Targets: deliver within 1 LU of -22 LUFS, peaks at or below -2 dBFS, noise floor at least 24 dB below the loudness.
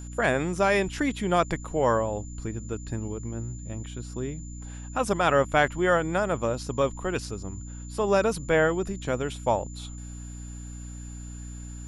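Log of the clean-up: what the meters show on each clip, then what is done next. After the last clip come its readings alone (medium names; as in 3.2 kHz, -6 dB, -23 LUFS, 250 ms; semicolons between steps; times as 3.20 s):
hum 60 Hz; highest harmonic 300 Hz; hum level -36 dBFS; steady tone 7.1 kHz; tone level -47 dBFS; loudness -27.0 LUFS; peak level -8.5 dBFS; loudness target -22.0 LUFS
-> de-hum 60 Hz, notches 5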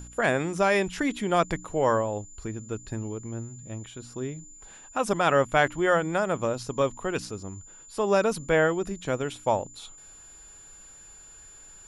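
hum not found; steady tone 7.1 kHz; tone level -47 dBFS
-> band-stop 7.1 kHz, Q 30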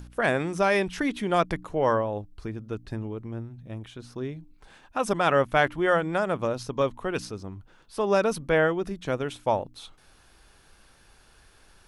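steady tone not found; loudness -27.0 LUFS; peak level -8.5 dBFS; loudness target -22.0 LUFS
-> trim +5 dB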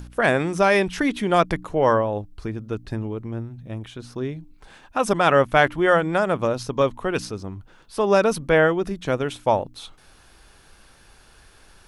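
loudness -22.0 LUFS; peak level -3.5 dBFS; noise floor -53 dBFS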